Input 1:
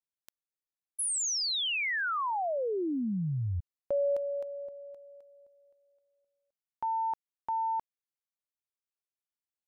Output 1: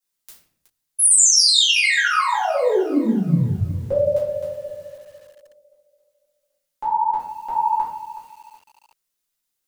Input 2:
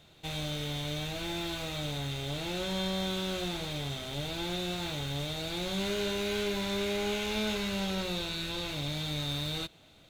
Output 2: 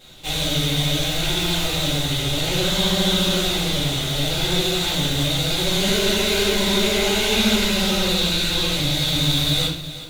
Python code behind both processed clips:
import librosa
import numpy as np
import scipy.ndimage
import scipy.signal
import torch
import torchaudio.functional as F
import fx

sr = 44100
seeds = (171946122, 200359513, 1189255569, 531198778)

y = fx.high_shelf(x, sr, hz=3400.0, db=10.0)
y = fx.vibrato(y, sr, rate_hz=14.0, depth_cents=94.0)
y = fx.room_shoebox(y, sr, seeds[0], volume_m3=86.0, walls='mixed', distance_m=2.2)
y = fx.echo_crushed(y, sr, ms=370, feedback_pct=35, bits=7, wet_db=-14.0)
y = y * librosa.db_to_amplitude(1.0)